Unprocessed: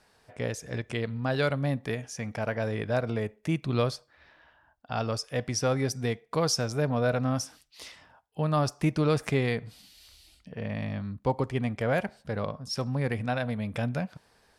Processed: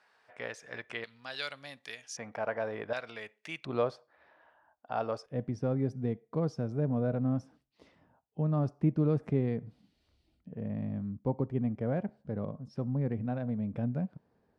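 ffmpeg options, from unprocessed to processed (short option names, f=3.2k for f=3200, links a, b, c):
-af "asetnsamples=n=441:p=0,asendcmd='1.04 bandpass f 4500;2.17 bandpass f 880;2.93 bandpass f 2800;3.65 bandpass f 680;5.26 bandpass f 210',bandpass=f=1.5k:t=q:w=0.86:csg=0"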